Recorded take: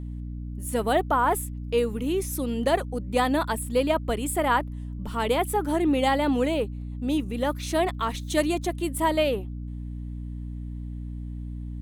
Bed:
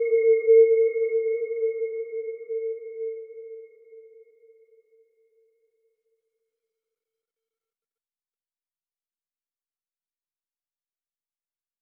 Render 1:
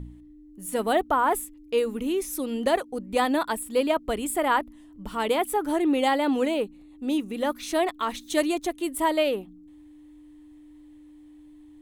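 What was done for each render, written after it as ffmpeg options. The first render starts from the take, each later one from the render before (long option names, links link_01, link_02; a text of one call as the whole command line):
ffmpeg -i in.wav -af "bandreject=frequency=60:width_type=h:width=4,bandreject=frequency=120:width_type=h:width=4,bandreject=frequency=180:width_type=h:width=4,bandreject=frequency=240:width_type=h:width=4" out.wav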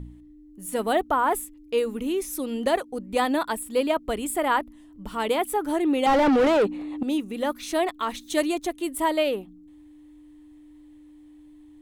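ffmpeg -i in.wav -filter_complex "[0:a]asettb=1/sr,asplit=3[link_01][link_02][link_03];[link_01]atrim=end=6.064[link_04];[link_02]atrim=start=6.06:end=7.03,asetpts=PTS-STARTPTS,afade=type=in:duration=0.004:curve=qsin,afade=type=out:start_time=0.966:duration=0.004:curve=qsin,asplit=2[link_05][link_06];[link_06]highpass=frequency=720:poles=1,volume=31dB,asoftclip=type=tanh:threshold=-11.5dB[link_07];[link_05][link_07]amix=inputs=2:normalize=0,lowpass=frequency=1100:poles=1,volume=-6dB[link_08];[link_03]atrim=start=7.026[link_09];[link_04][link_08]acrossfade=duration=0.004:curve1=hsin:curve2=qsin[link_10];[link_10][link_09]acrossfade=duration=0.004:curve1=qsin:curve2=hsin" out.wav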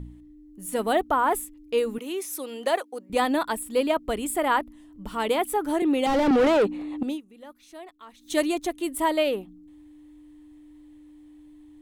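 ffmpeg -i in.wav -filter_complex "[0:a]asettb=1/sr,asplit=3[link_01][link_02][link_03];[link_01]atrim=end=1.984[link_04];[link_02]atrim=start=1.98:end=3.1,asetpts=PTS-STARTPTS,afade=type=in:duration=0.004:curve=qsin,afade=type=out:start_time=1.116:duration=0.004:curve=qsin,highpass=440[link_05];[link_03]atrim=start=3.096[link_06];[link_04][link_05]acrossfade=duration=0.004:curve1=hsin:curve2=qsin[link_07];[link_07][link_06]acrossfade=duration=0.004:curve1=qsin:curve2=hsin,asettb=1/sr,asplit=3[link_08][link_09][link_10];[link_08]atrim=end=5.824[link_11];[link_09]atrim=start=5.82:end=6.31,asetpts=PTS-STARTPTS,afade=type=in:duration=0.004:curve=qsin,afade=type=out:start_time=0.486:duration=0.004:curve=qsin,acrossover=split=490|3000[link_12][link_13][link_14];[link_13]acompressor=threshold=-24dB:ratio=6:attack=3.2:release=140:knee=2.83:detection=peak[link_15];[link_12][link_15][link_14]amix=inputs=3:normalize=0[link_16];[link_10]atrim=start=6.306[link_17];[link_11][link_16]acrossfade=duration=0.004:curve1=hsin:curve2=qsin[link_18];[link_18][link_17]acrossfade=duration=0.004:curve1=qsin:curve2=hsin,asplit=3[link_19][link_20][link_21];[link_19]atrim=end=7.21,asetpts=PTS-STARTPTS,afade=type=out:start_time=7.05:duration=0.16:silence=0.11885[link_22];[link_20]atrim=start=7.21:end=8.18,asetpts=PTS-STARTPTS,volume=-18.5dB[link_23];[link_21]atrim=start=8.18,asetpts=PTS-STARTPTS,afade=type=in:duration=0.16:silence=0.11885[link_24];[link_22][link_23][link_24]concat=n=3:v=0:a=1" out.wav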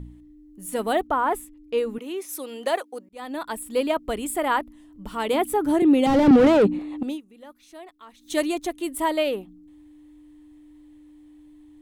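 ffmpeg -i in.wav -filter_complex "[0:a]asettb=1/sr,asplit=3[link_01][link_02][link_03];[link_01]atrim=end=1.074[link_04];[link_02]atrim=start=1.07:end=2.29,asetpts=PTS-STARTPTS,afade=type=in:duration=0.004:curve=qsin,afade=type=out:start_time=1.216:duration=0.004:curve=qsin,highshelf=frequency=4200:gain=-7.5[link_05];[link_03]atrim=start=2.286[link_06];[link_04][link_05]acrossfade=duration=0.004:curve1=hsin:curve2=qsin[link_07];[link_07][link_06]acrossfade=duration=0.004:curve1=qsin:curve2=hsin,asettb=1/sr,asplit=3[link_08][link_09][link_10];[link_08]atrim=end=5.334[link_11];[link_09]atrim=start=5.33:end=6.79,asetpts=PTS-STARTPTS,afade=type=in:duration=0.004:curve=qsin,afade=type=out:start_time=1.456:duration=0.004:curve=qsin,equalizer=frequency=130:width_type=o:width=2.2:gain=13.5[link_12];[link_10]atrim=start=6.786[link_13];[link_11][link_12]acrossfade=duration=0.004:curve1=hsin:curve2=qsin[link_14];[link_14][link_13]acrossfade=duration=0.004:curve1=qsin:curve2=hsin,asplit=2[link_15][link_16];[link_15]atrim=end=3.09,asetpts=PTS-STARTPTS,afade=type=out:start_time=3.086:duration=0.004:curve=hsin[link_17];[link_16]atrim=start=3.09,asetpts=PTS-STARTPTS,afade=type=in:duration=0.61[link_18];[link_17][link_18]concat=n=2:v=0:a=1" out.wav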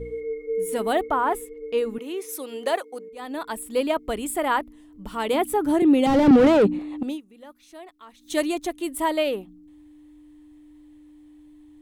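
ffmpeg -i in.wav -i bed.wav -filter_complex "[1:a]volume=-11.5dB[link_01];[0:a][link_01]amix=inputs=2:normalize=0" out.wav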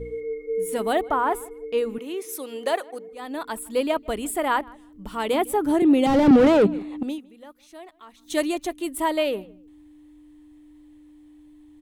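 ffmpeg -i in.wav -filter_complex "[0:a]asplit=2[link_01][link_02];[link_02]adelay=158,lowpass=frequency=2500:poles=1,volume=-23dB,asplit=2[link_03][link_04];[link_04]adelay=158,lowpass=frequency=2500:poles=1,volume=0.17[link_05];[link_01][link_03][link_05]amix=inputs=3:normalize=0" out.wav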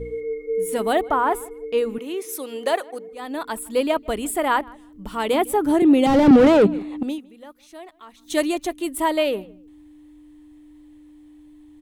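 ffmpeg -i in.wav -af "volume=2.5dB" out.wav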